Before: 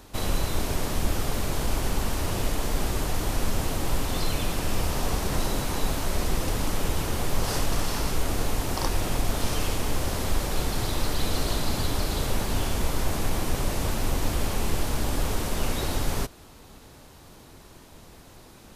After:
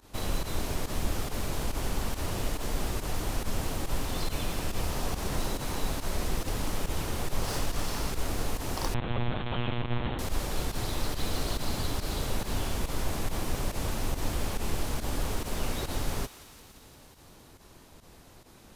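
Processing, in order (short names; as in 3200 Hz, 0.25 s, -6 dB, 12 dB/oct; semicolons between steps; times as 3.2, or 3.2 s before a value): tracing distortion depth 0.029 ms; pump 140 bpm, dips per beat 1, -16 dB, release 67 ms; thinning echo 0.173 s, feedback 76%, high-pass 1100 Hz, level -14 dB; 8.94–10.19 monotone LPC vocoder at 8 kHz 120 Hz; gain -4.5 dB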